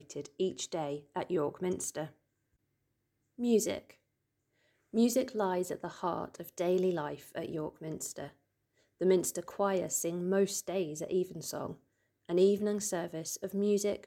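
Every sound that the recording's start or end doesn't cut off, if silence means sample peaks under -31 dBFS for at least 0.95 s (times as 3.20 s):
3.42–3.77 s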